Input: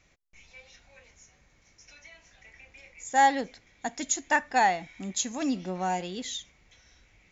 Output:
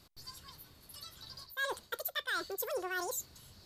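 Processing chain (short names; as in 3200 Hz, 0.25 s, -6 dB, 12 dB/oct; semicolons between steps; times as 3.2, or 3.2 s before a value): reverse; compressor 5:1, threshold -38 dBFS, peak gain reduction 19 dB; reverse; speed mistake 7.5 ips tape played at 15 ips; gain +3 dB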